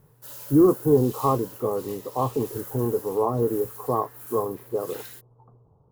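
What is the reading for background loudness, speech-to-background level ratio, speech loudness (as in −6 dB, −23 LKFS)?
−40.0 LKFS, 15.5 dB, −24.5 LKFS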